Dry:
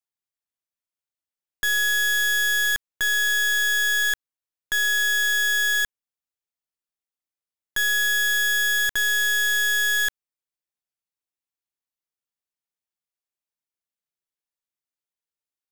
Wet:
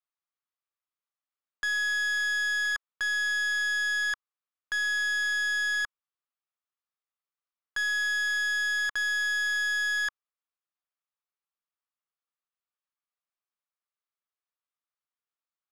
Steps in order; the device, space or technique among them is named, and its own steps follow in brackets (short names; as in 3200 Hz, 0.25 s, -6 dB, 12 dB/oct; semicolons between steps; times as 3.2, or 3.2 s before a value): intercom (BPF 490–3700 Hz; bell 1200 Hz +9 dB 0.44 oct; soft clip -23 dBFS, distortion -15 dB); gain -2.5 dB